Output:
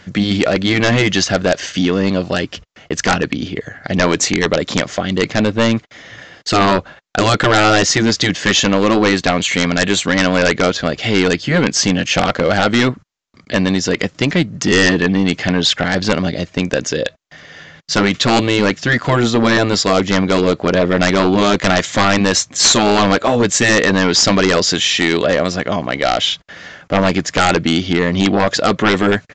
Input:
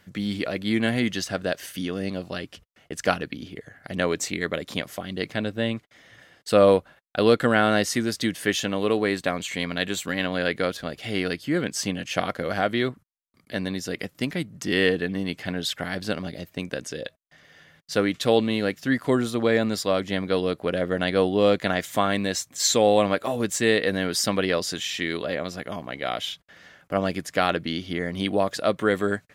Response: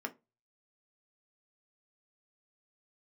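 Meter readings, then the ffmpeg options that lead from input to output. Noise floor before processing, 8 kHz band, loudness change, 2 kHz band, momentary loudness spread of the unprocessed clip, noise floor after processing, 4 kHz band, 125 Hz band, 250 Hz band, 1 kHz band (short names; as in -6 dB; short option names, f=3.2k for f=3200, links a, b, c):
-63 dBFS, +12.5 dB, +10.5 dB, +11.5 dB, 12 LU, -49 dBFS, +13.0 dB, +13.0 dB, +11.0 dB, +11.5 dB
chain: -af "afftfilt=real='re*lt(hypot(re,im),0.562)':imag='im*lt(hypot(re,im),0.562)':win_size=1024:overlap=0.75,aresample=16000,aeval=exprs='0.562*sin(PI/2*4.47*val(0)/0.562)':c=same,aresample=44100,volume=-1.5dB"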